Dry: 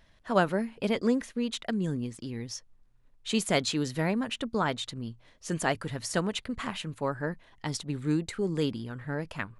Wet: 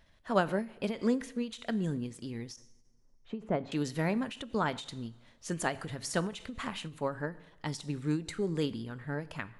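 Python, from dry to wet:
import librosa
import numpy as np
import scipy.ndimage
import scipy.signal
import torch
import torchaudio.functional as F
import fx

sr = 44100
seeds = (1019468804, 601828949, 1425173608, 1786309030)

y = fx.lowpass(x, sr, hz=1000.0, slope=12, at=(2.56, 3.72))
y = fx.rev_double_slope(y, sr, seeds[0], early_s=0.64, late_s=2.1, knee_db=-18, drr_db=14.5)
y = fx.end_taper(y, sr, db_per_s=180.0)
y = y * librosa.db_to_amplitude(-2.5)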